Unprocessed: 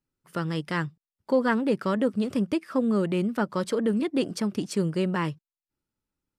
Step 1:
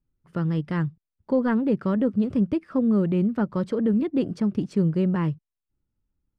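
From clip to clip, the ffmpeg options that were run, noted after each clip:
-af "aemphasis=mode=reproduction:type=riaa,volume=0.668"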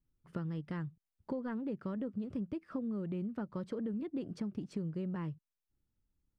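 -af "acompressor=threshold=0.0251:ratio=6,volume=0.631"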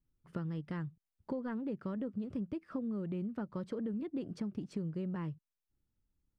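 -af anull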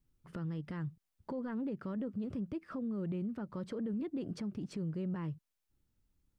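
-af "alimiter=level_in=3.98:limit=0.0631:level=0:latency=1:release=66,volume=0.251,volume=1.68"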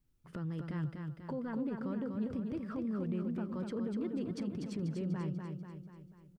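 -af "aecho=1:1:244|488|732|976|1220|1464|1708:0.562|0.292|0.152|0.0791|0.0411|0.0214|0.0111"

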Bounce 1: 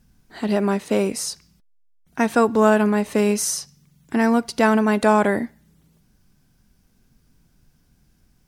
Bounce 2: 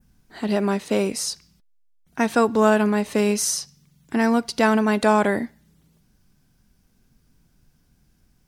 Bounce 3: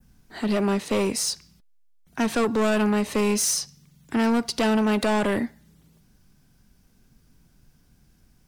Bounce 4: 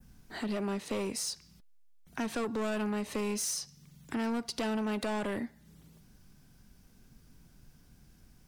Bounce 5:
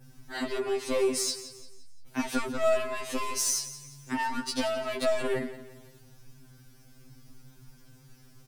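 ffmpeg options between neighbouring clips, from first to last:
-af "adynamicequalizer=threshold=0.01:dfrequency=4200:dqfactor=0.97:tfrequency=4200:tqfactor=0.97:attack=5:release=100:ratio=0.375:range=2:mode=boostabove:tftype=bell,volume=0.841"
-filter_complex "[0:a]acrossover=split=290|1100|1900[s0][s1][s2][s3];[s2]alimiter=level_in=1.41:limit=0.0631:level=0:latency=1,volume=0.708[s4];[s0][s1][s4][s3]amix=inputs=4:normalize=0,asoftclip=type=tanh:threshold=0.1,volume=1.33"
-af "acompressor=threshold=0.00891:ratio=2"
-af "aecho=1:1:173|346|519|692:0.2|0.0798|0.0319|0.0128,afftfilt=real='re*2.45*eq(mod(b,6),0)':imag='im*2.45*eq(mod(b,6),0)':win_size=2048:overlap=0.75,volume=2.51"

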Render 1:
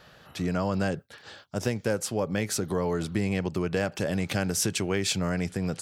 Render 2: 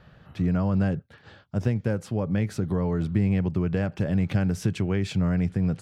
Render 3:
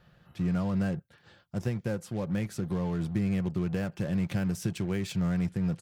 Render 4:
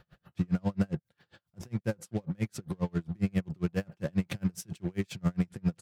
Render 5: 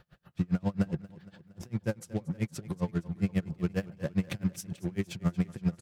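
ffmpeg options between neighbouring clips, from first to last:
-af "bass=f=250:g=12,treble=f=4000:g=-13,volume=0.668"
-filter_complex "[0:a]asplit=2[s0][s1];[s1]acrusher=bits=4:mix=0:aa=0.5,volume=0.355[s2];[s0][s2]amix=inputs=2:normalize=0,aecho=1:1:5.7:0.32,crystalizer=i=1.5:c=0,volume=0.376"
-af "aeval=exprs='val(0)*pow(10,-37*(0.5-0.5*cos(2*PI*7.4*n/s))/20)':c=same,volume=1.78"
-af "aecho=1:1:232|464|696|928|1160:0.112|0.0651|0.0377|0.0219|0.0127"

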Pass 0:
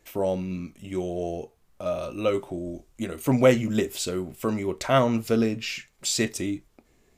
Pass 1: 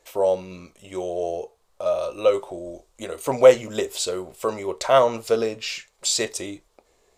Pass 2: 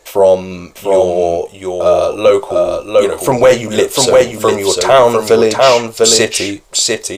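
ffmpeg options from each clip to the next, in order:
-af "equalizer=f=125:t=o:w=1:g=-5,equalizer=f=250:t=o:w=1:g=-8,equalizer=f=500:t=o:w=1:g=11,equalizer=f=1000:t=o:w=1:g=8,equalizer=f=4000:t=o:w=1:g=7,equalizer=f=8000:t=o:w=1:g=7,volume=0.631"
-af "aecho=1:1:699:0.631,apsyclip=5.62,volume=0.841"

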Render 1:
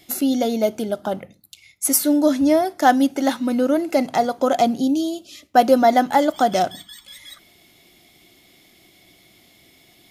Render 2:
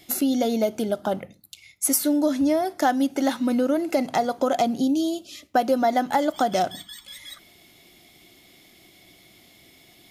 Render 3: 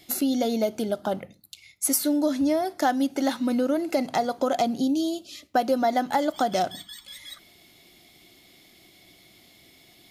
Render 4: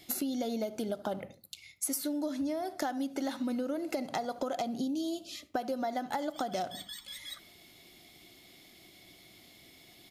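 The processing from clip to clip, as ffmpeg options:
-af "acompressor=threshold=0.112:ratio=3"
-af "equalizer=f=4300:w=3.7:g=3.5,volume=0.794"
-filter_complex "[0:a]asplit=2[s0][s1];[s1]adelay=73,lowpass=f=1400:p=1,volume=0.15,asplit=2[s2][s3];[s3]adelay=73,lowpass=f=1400:p=1,volume=0.4,asplit=2[s4][s5];[s5]adelay=73,lowpass=f=1400:p=1,volume=0.4[s6];[s0][s2][s4][s6]amix=inputs=4:normalize=0,acompressor=threshold=0.0355:ratio=6,volume=0.794"

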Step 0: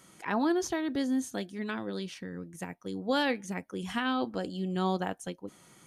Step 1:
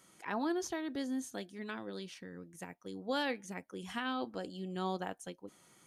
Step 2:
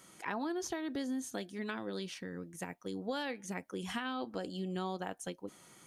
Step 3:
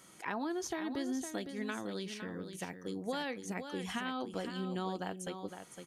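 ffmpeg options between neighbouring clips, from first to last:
-af "bass=f=250:g=-4,treble=f=4000:g=1,volume=0.501"
-af "acompressor=threshold=0.0112:ratio=5,volume=1.78"
-af "aecho=1:1:509:0.376"

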